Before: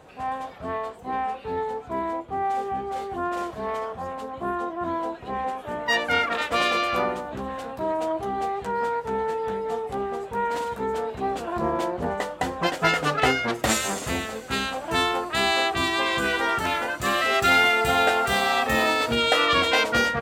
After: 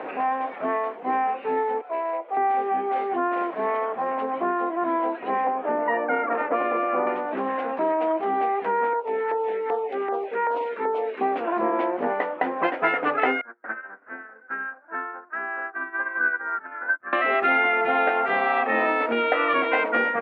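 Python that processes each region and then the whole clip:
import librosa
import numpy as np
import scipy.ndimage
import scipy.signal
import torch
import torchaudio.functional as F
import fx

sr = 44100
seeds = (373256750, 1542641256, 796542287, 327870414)

y = fx.chain(x, sr, fx.ladder_highpass(hz=460.0, resonance_pct=50),
    fx.clip_hard(threshold_db=-29.5), at=(1.81, 2.37))
y = fx.chain(y, sr, fx.lowpass(hz=1100.0, slope=12),
    fx.band_squash(depth_pct=70), at=(5.47, 7.07))
y = fx.chain(y, sr, fx.cheby1_highpass(hz=440.0, order=2),
    fx.filter_lfo_notch(shape='saw_down', hz=2.6, low_hz=530.0, high_hz=2900.0, q=0.87), at=(8.93, 11.21))
y = fx.chain(y, sr, fx.ladder_lowpass(hz=1600.0, resonance_pct=85),
    fx.upward_expand(threshold_db=-41.0, expansion=2.5), at=(13.41, 17.13))
y = scipy.signal.sosfilt(scipy.signal.cheby1(3, 1.0, [260.0, 2300.0], 'bandpass', fs=sr, output='sos'), y)
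y = fx.band_squash(y, sr, depth_pct=70)
y = F.gain(torch.from_numpy(y), 2.5).numpy()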